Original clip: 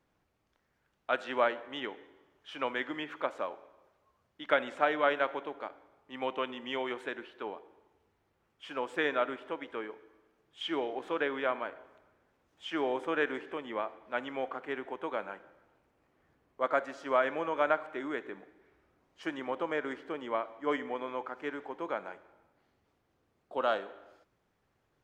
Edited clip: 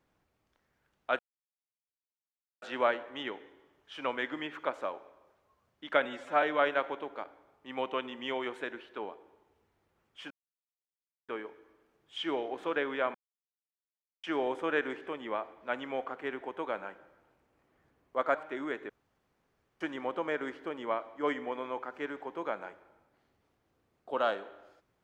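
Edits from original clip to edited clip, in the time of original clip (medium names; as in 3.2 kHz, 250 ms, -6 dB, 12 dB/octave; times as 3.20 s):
1.19 s: insert silence 1.43 s
4.62–4.87 s: stretch 1.5×
8.75–9.73 s: mute
11.59–12.68 s: mute
16.79–17.78 s: delete
18.33–19.24 s: room tone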